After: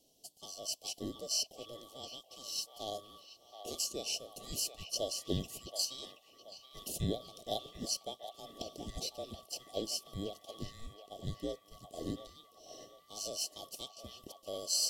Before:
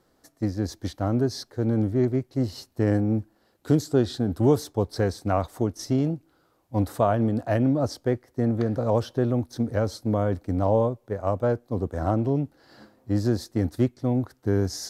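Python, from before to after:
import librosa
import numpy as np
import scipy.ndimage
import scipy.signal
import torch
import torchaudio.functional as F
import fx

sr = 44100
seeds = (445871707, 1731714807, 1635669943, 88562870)

y = fx.band_swap(x, sr, width_hz=1000)
y = scipy.signal.sosfilt(scipy.signal.ellip(3, 1.0, 70, [670.0, 3200.0], 'bandstop', fs=sr, output='sos'), y)
y = fx.low_shelf(y, sr, hz=210.0, db=-8.5)
y = fx.echo_wet_bandpass(y, sr, ms=726, feedback_pct=41, hz=1400.0, wet_db=-5.0)
y = y * 10.0 ** (5.0 / 20.0)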